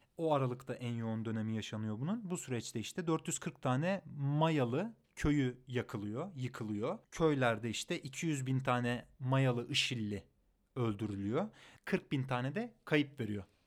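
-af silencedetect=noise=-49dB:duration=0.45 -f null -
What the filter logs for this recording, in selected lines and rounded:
silence_start: 10.21
silence_end: 10.76 | silence_duration: 0.55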